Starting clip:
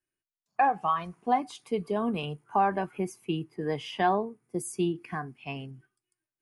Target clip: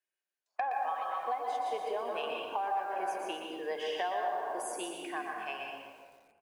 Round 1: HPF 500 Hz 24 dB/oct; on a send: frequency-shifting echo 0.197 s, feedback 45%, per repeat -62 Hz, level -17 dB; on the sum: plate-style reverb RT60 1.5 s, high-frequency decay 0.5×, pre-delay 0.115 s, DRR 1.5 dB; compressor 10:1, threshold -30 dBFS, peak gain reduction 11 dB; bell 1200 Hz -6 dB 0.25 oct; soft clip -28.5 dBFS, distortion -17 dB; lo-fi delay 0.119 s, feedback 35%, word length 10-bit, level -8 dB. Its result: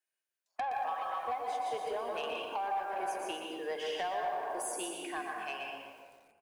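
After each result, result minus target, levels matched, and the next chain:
soft clip: distortion +14 dB; 8000 Hz band +4.5 dB
HPF 500 Hz 24 dB/oct; on a send: frequency-shifting echo 0.197 s, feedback 45%, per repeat -62 Hz, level -17 dB; on the sum: plate-style reverb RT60 1.5 s, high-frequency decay 0.5×, pre-delay 0.115 s, DRR 1.5 dB; compressor 10:1, threshold -30 dBFS, peak gain reduction 11 dB; bell 1200 Hz -6 dB 0.25 oct; soft clip -19 dBFS, distortion -31 dB; lo-fi delay 0.119 s, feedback 35%, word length 10-bit, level -8 dB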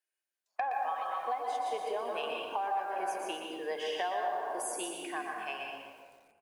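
8000 Hz band +4.0 dB
HPF 500 Hz 24 dB/oct; high shelf 5900 Hz -6.5 dB; on a send: frequency-shifting echo 0.197 s, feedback 45%, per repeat -62 Hz, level -17 dB; on the sum: plate-style reverb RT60 1.5 s, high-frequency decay 0.5×, pre-delay 0.115 s, DRR 1.5 dB; compressor 10:1, threshold -30 dBFS, peak gain reduction 11 dB; bell 1200 Hz -6 dB 0.25 oct; soft clip -19 dBFS, distortion -32 dB; lo-fi delay 0.119 s, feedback 35%, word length 10-bit, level -8 dB

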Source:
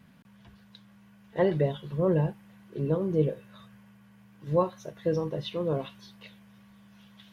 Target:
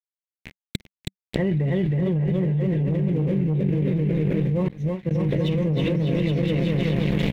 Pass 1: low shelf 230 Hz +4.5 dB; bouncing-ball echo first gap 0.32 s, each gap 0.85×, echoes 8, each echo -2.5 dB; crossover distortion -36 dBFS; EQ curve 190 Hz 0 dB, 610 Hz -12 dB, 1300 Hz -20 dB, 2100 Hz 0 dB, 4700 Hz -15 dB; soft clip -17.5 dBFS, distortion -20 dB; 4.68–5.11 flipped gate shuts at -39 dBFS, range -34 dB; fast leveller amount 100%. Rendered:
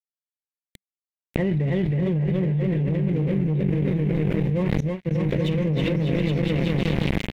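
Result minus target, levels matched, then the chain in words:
crossover distortion: distortion +6 dB
low shelf 230 Hz +4.5 dB; bouncing-ball echo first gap 0.32 s, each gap 0.85×, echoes 8, each echo -2.5 dB; crossover distortion -42.5 dBFS; EQ curve 190 Hz 0 dB, 610 Hz -12 dB, 1300 Hz -20 dB, 2100 Hz 0 dB, 4700 Hz -15 dB; soft clip -17.5 dBFS, distortion -20 dB; 4.68–5.11 flipped gate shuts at -39 dBFS, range -34 dB; fast leveller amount 100%

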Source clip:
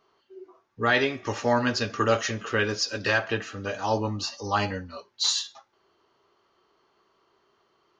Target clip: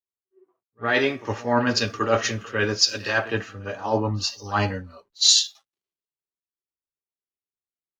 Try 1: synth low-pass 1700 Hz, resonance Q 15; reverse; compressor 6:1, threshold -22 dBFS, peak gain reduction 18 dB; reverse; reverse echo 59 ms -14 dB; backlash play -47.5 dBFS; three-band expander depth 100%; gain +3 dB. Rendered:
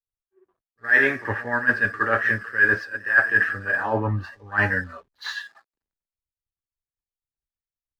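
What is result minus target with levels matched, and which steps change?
2000 Hz band +8.5 dB; backlash: distortion +7 dB
change: backlash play -57.5 dBFS; remove: synth low-pass 1700 Hz, resonance Q 15

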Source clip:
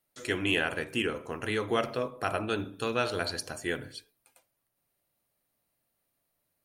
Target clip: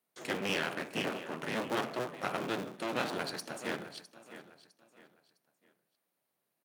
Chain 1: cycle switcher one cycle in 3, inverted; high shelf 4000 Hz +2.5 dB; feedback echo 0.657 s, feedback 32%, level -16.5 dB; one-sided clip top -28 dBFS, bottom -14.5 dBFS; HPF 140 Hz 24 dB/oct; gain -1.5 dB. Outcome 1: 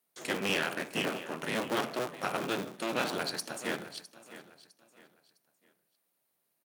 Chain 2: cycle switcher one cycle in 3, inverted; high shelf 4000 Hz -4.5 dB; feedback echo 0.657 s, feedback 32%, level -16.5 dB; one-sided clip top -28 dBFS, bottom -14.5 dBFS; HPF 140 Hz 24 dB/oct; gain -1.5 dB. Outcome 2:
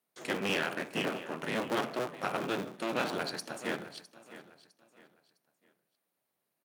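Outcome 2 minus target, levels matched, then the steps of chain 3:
one-sided clip: distortion -5 dB
cycle switcher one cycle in 3, inverted; high shelf 4000 Hz -4.5 dB; feedback echo 0.657 s, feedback 32%, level -16.5 dB; one-sided clip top -36.5 dBFS, bottom -14.5 dBFS; HPF 140 Hz 24 dB/oct; gain -1.5 dB

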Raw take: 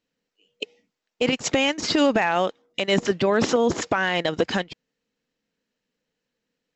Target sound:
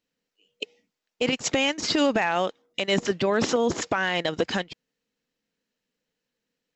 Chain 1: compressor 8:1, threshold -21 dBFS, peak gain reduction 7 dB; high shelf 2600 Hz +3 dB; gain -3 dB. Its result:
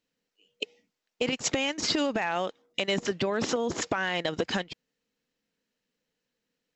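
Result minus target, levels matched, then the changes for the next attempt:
compressor: peak gain reduction +7 dB
remove: compressor 8:1, threshold -21 dBFS, peak gain reduction 7 dB

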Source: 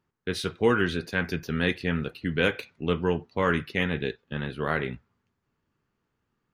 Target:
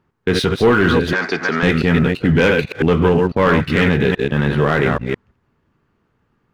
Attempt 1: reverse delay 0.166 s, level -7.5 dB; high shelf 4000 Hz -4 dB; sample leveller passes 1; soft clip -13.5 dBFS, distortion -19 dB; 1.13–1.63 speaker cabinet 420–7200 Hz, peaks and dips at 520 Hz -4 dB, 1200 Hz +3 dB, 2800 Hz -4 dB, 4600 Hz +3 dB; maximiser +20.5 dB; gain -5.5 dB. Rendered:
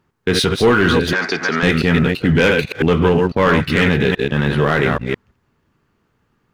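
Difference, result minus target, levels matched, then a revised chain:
8000 Hz band +5.5 dB
reverse delay 0.166 s, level -7.5 dB; high shelf 4000 Hz -13.5 dB; sample leveller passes 1; soft clip -13.5 dBFS, distortion -20 dB; 1.13–1.63 speaker cabinet 420–7200 Hz, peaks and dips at 520 Hz -4 dB, 1200 Hz +3 dB, 2800 Hz -4 dB, 4600 Hz +3 dB; maximiser +20.5 dB; gain -5.5 dB

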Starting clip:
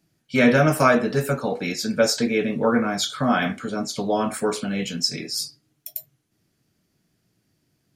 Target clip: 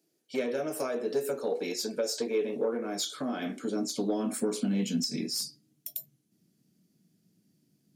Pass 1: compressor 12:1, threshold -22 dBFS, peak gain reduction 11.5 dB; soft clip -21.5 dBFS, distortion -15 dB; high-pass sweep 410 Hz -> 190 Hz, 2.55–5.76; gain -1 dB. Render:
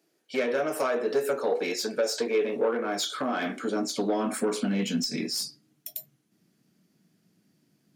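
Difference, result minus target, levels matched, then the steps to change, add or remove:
1000 Hz band +5.0 dB
add after compressor: bell 1300 Hz -11.5 dB 2.7 oct

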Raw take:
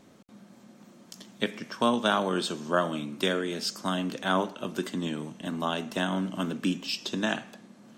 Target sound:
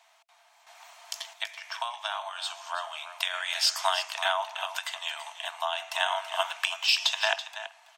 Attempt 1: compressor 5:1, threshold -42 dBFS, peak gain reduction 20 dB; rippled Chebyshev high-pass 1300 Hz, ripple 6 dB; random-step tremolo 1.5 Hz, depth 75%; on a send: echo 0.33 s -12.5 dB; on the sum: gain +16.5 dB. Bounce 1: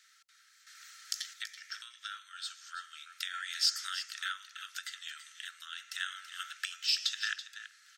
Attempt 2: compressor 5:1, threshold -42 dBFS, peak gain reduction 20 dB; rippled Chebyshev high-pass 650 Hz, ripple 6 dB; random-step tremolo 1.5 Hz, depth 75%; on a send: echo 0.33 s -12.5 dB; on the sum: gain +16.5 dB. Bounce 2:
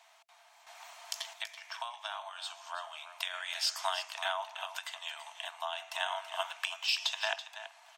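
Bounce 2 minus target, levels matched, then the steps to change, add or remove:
compressor: peak gain reduction +7 dB
change: compressor 5:1, threshold -33 dBFS, peak gain reduction 13 dB

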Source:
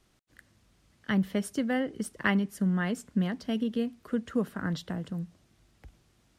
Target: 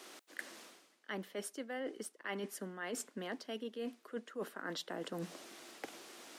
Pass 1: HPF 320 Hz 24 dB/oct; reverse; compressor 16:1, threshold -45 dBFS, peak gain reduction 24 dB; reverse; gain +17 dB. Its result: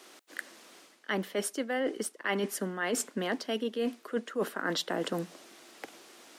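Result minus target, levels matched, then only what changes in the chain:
compressor: peak gain reduction -10.5 dB
change: compressor 16:1, threshold -56 dBFS, peak gain reduction 34.5 dB

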